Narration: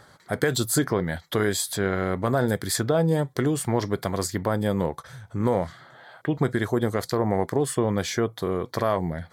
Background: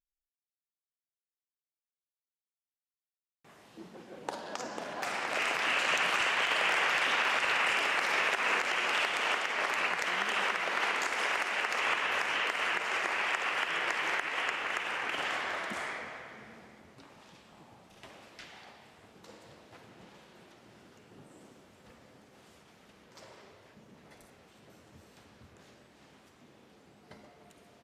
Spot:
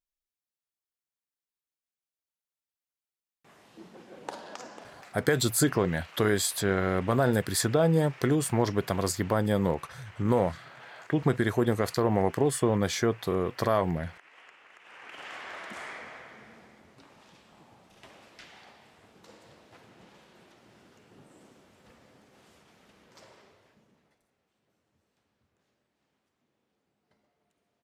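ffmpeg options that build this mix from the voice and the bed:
-filter_complex "[0:a]adelay=4850,volume=-1.5dB[a];[1:a]volume=20dB,afade=t=out:st=4.28:d=0.85:silence=0.0891251,afade=t=in:st=14.79:d=1.41:silence=0.0944061,afade=t=out:st=23.14:d=1.05:silence=0.11885[b];[a][b]amix=inputs=2:normalize=0"

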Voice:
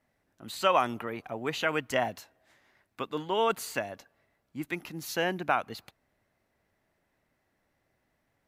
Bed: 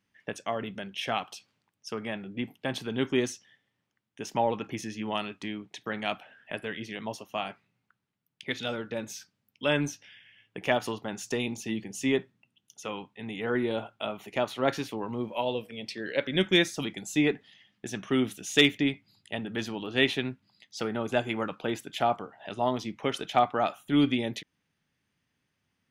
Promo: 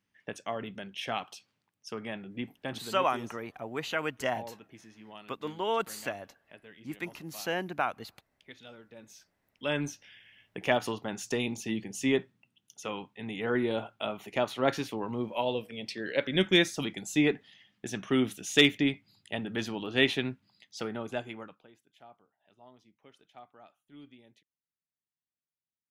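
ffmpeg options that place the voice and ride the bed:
-filter_complex "[0:a]adelay=2300,volume=-3dB[a];[1:a]volume=13dB,afade=t=out:st=2.56:d=0.54:silence=0.211349,afade=t=in:st=8.96:d=1.4:silence=0.149624,afade=t=out:st=20.42:d=1.26:silence=0.0421697[b];[a][b]amix=inputs=2:normalize=0"

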